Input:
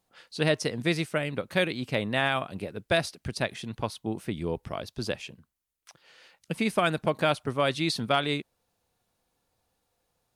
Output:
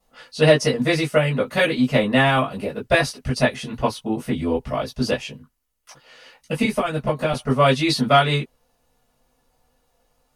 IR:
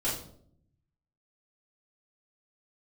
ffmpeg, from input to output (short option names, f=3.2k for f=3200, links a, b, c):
-filter_complex "[0:a]asettb=1/sr,asplit=3[a][b][c];[a]atrim=end=6.634[d];[b]atrim=start=6.63:end=7.33,asetpts=PTS-STARTPTS,afade=t=in:d=0.004:c=qsin,afade=t=out:st=0.696:d=0.004:c=qsin,acrossover=split=160[e][f];[f]acompressor=threshold=-29dB:ratio=6[g];[e][g]amix=inputs=2:normalize=0[h];[c]atrim=start=7.326[i];[d][h]acrossfade=d=0.004:c1=hsin:c2=qsin[j];[j][i]acrossfade=d=0.004:c1=qsin:c2=hsin[k];[1:a]atrim=start_sample=2205,atrim=end_sample=3528,asetrate=88200,aresample=44100[l];[k][l]afir=irnorm=-1:irlink=0,volume=7.5dB"